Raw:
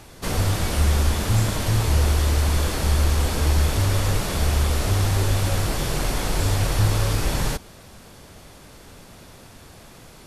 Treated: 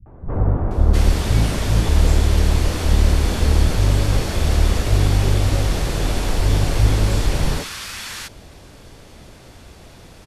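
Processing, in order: octave divider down 1 oct, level 0 dB; treble shelf 10 kHz -11 dB; three bands offset in time lows, mids, highs 60/710 ms, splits 160/1200 Hz; trim +2.5 dB

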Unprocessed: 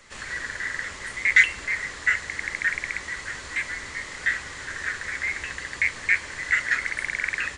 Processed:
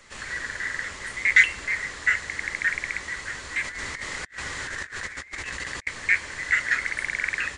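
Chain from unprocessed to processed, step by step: 3.64–5.87 s: compressor with a negative ratio -35 dBFS, ratio -0.5

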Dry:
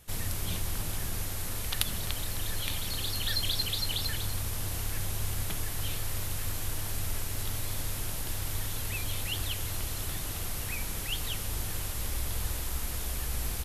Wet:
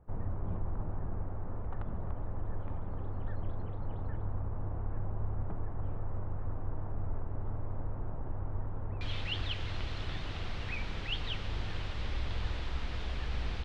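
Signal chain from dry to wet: low-pass 1.1 kHz 24 dB/octave, from 9.01 s 3.9 kHz; trim -1 dB

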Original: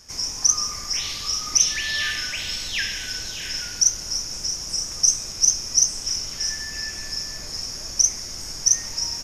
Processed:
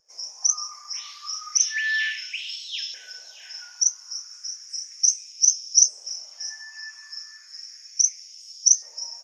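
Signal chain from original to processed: LFO high-pass saw up 0.34 Hz 500–3900 Hz; spectral contrast expander 1.5:1; trim -1.5 dB

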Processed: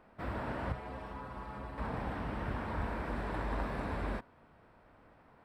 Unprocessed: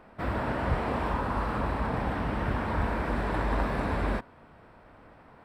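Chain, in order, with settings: 0.72–1.78 s: inharmonic resonator 64 Hz, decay 0.24 s, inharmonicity 0.008; trim -8 dB

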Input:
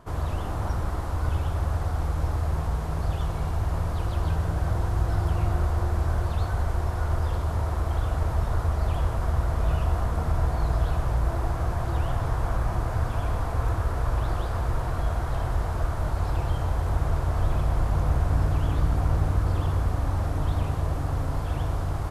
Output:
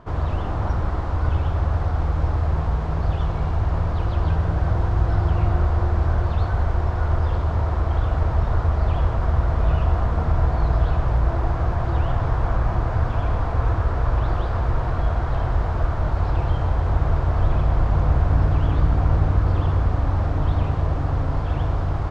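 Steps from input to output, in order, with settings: distance through air 160 m; trim +5 dB

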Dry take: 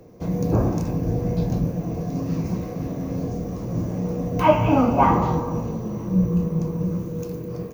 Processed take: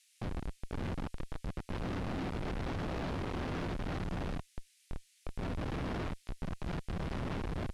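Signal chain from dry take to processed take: tilt shelf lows -5 dB, about 650 Hz; compressor with a negative ratio -32 dBFS, ratio -1; static phaser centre 460 Hz, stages 6; integer overflow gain 30 dB; feedback comb 87 Hz, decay 0.23 s, harmonics all, mix 40%; feedback echo behind a high-pass 608 ms, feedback 39%, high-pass 4.6 kHz, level -14 dB; Schmitt trigger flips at -33 dBFS; distance through air 190 m; band noise 2–11 kHz -72 dBFS; trim +3.5 dB

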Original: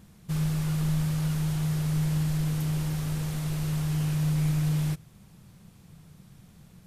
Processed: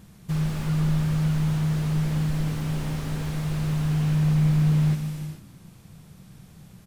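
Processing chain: frequency-shifting echo 157 ms, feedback 37%, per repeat +61 Hz, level -20.5 dB; gated-style reverb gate 470 ms flat, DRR 6.5 dB; slew-rate limiter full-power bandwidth 25 Hz; trim +3.5 dB

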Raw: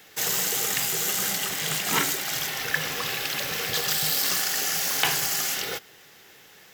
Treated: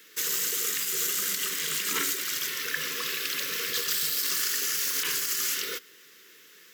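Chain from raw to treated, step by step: high-pass 310 Hz 12 dB/octave; peaking EQ 2.1 kHz -2.5 dB 2.6 oct; peak limiter -16 dBFS, peak gain reduction 9.5 dB; Butterworth band-stop 730 Hz, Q 1.1

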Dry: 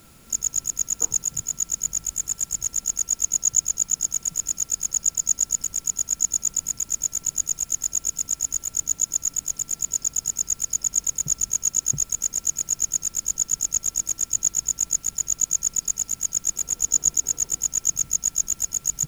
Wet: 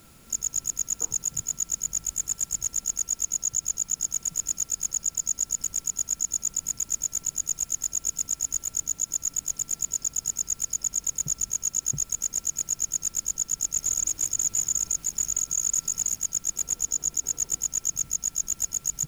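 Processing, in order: 13.62–16.18 s: chunks repeated in reverse 139 ms, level 0 dB; peak limiter -14 dBFS, peak gain reduction 8 dB; trim -2 dB

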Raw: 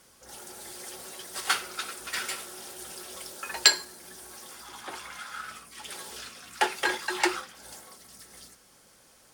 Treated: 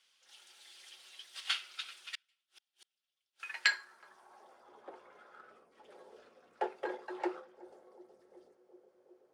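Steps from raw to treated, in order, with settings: band-passed feedback delay 370 ms, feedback 82%, band-pass 400 Hz, level -18 dB; in parallel at -12 dB: bit crusher 5-bit; on the sum: band-pass sweep 3.1 kHz -> 500 Hz, 3.25–4.76 s; 2.15–3.40 s: inverted gate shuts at -42 dBFS, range -36 dB; trim -3 dB

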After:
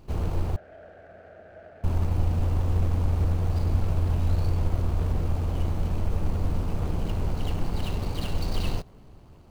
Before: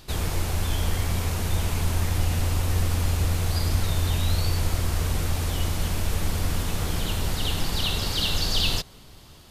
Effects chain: median filter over 25 samples; 0.56–1.84 s: two resonant band-passes 1 kHz, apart 1.3 oct

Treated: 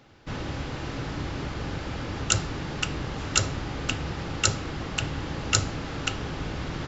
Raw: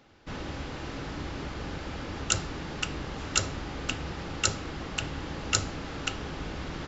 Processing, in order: peaking EQ 120 Hz +6.5 dB 0.53 oct; trim +3 dB

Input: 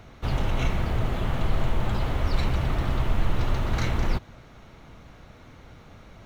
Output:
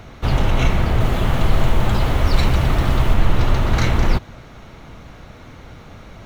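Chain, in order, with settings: 1.00–3.14 s: treble shelf 5.8 kHz +5.5 dB; trim +8.5 dB

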